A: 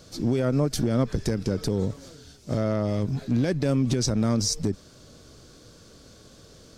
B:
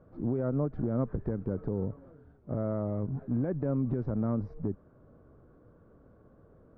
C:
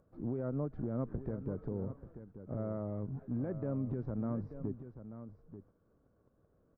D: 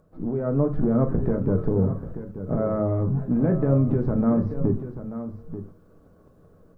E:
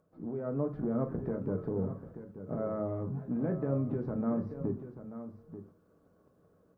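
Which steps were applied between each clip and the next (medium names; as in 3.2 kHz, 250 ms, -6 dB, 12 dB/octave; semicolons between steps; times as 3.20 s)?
low-pass 1.3 kHz 24 dB/octave; trim -6.5 dB
gate -53 dBFS, range -23 dB; upward compressor, threshold -49 dBFS; on a send: delay 886 ms -11.5 dB; on the sum: trim -6.5 dB
level rider gain up to 7 dB; on a send at -4.5 dB: reverberation RT60 0.30 s, pre-delay 5 ms; on the sum: trim +7.5 dB
high-pass 160 Hz 6 dB/octave; trim -9 dB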